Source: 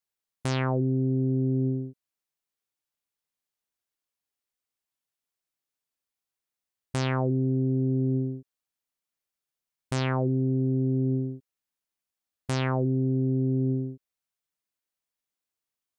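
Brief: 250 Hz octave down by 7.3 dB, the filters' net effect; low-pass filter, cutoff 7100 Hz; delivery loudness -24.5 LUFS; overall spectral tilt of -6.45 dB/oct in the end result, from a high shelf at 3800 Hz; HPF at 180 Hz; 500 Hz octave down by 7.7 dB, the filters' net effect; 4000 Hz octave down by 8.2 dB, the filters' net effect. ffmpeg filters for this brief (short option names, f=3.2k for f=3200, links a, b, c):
-af "highpass=180,lowpass=7.1k,equalizer=f=250:t=o:g=-4.5,equalizer=f=500:t=o:g=-8.5,highshelf=f=3.8k:g=-8,equalizer=f=4k:t=o:g=-5.5,volume=10dB"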